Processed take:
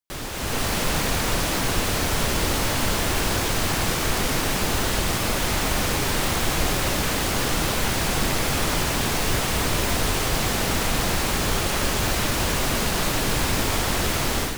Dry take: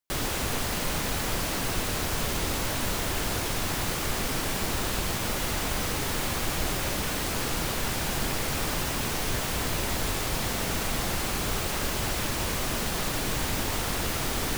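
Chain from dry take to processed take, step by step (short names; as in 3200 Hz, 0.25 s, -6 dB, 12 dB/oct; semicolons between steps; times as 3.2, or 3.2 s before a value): AGC gain up to 10 dB; Doppler distortion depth 0.59 ms; gain -3.5 dB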